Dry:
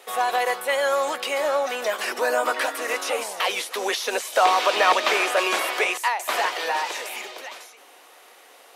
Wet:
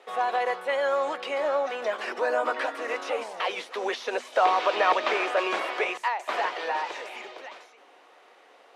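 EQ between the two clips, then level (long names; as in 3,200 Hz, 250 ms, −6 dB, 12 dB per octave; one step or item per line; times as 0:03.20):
head-to-tape spacing loss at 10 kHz 21 dB
mains-hum notches 50/100/150/200/250 Hz
−1.5 dB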